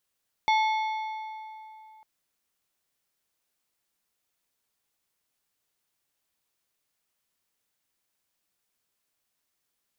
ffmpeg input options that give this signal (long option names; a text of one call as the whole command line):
ffmpeg -f lavfi -i "aevalsrc='0.106*pow(10,-3*t/2.95)*sin(2*PI*872*t)+0.0501*pow(10,-3*t/2.241)*sin(2*PI*2180*t)+0.0237*pow(10,-3*t/1.946)*sin(2*PI*3488*t)+0.0112*pow(10,-3*t/1.82)*sin(2*PI*4360*t)+0.00531*pow(10,-3*t/1.682)*sin(2*PI*5668*t)':duration=1.55:sample_rate=44100" out.wav